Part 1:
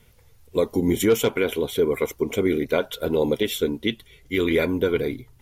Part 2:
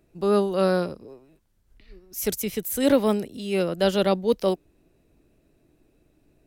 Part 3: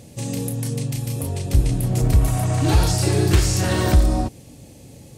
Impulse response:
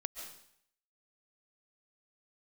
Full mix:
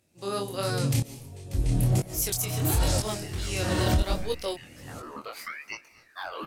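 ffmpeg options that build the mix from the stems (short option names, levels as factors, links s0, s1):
-filter_complex "[0:a]acompressor=threshold=0.0631:ratio=6,aeval=exprs='val(0)*sin(2*PI*1600*n/s+1600*0.55/0.76*sin(2*PI*0.76*n/s))':c=same,adelay=1850,volume=0.562,asplit=3[s0][s1][s2];[s1]volume=0.158[s3];[s2]volume=0.0891[s4];[1:a]highpass=f=500:p=1,equalizer=f=7700:w=0.32:g=12.5,volume=0.596,asplit=2[s5][s6];[2:a]asoftclip=type=hard:threshold=0.473,aeval=exprs='val(0)*pow(10,-34*if(lt(mod(-1*n/s,1),2*abs(-1)/1000),1-mod(-1*n/s,1)/(2*abs(-1)/1000),(mod(-1*n/s,1)-2*abs(-1)/1000)/(1-2*abs(-1)/1000))/20)':c=same,volume=1.41,asplit=2[s7][s8];[s8]volume=0.708[s9];[s6]apad=whole_len=320270[s10];[s0][s10]sidechaincompress=threshold=0.00501:ratio=8:attack=16:release=512[s11];[3:a]atrim=start_sample=2205[s12];[s3][s9]amix=inputs=2:normalize=0[s13];[s13][s12]afir=irnorm=-1:irlink=0[s14];[s4]aecho=0:1:248|496|744|992|1240|1488|1736:1|0.49|0.24|0.118|0.0576|0.0282|0.0138[s15];[s11][s5][s7][s14][s15]amix=inputs=5:normalize=0,flanger=delay=19:depth=6.9:speed=1.4,alimiter=limit=0.178:level=0:latency=1:release=151"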